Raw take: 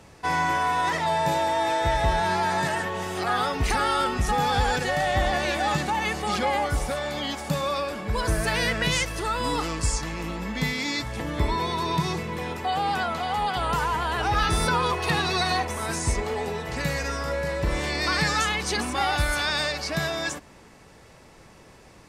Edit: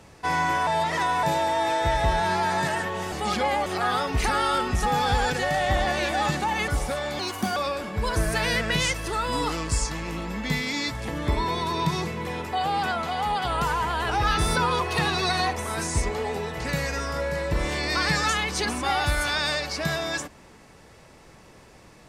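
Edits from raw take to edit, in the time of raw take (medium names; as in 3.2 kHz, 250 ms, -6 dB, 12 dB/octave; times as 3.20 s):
0.67–1.23 s: reverse
6.14–6.68 s: move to 3.12 s
7.19–7.68 s: speed 131%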